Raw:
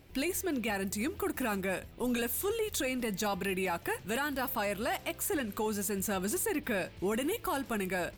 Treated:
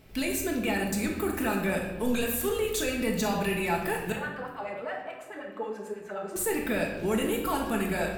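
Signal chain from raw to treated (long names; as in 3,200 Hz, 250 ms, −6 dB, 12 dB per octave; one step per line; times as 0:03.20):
0:04.12–0:06.36: auto-filter band-pass sine 9.3 Hz 420–1,900 Hz
rectangular room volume 540 cubic metres, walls mixed, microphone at 1.5 metres
level +1 dB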